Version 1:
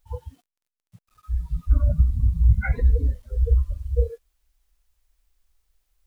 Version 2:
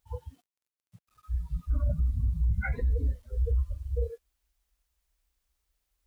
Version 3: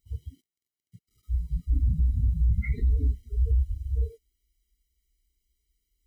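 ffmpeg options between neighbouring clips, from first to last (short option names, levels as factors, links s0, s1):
-af "highpass=40,alimiter=limit=0.158:level=0:latency=1:release=16,volume=0.596"
-af "asuperstop=centerf=1100:order=4:qfactor=0.82,afftfilt=real='re*eq(mod(floor(b*sr/1024/470),2),0)':imag='im*eq(mod(floor(b*sr/1024/470),2),0)':win_size=1024:overlap=0.75,volume=1.5"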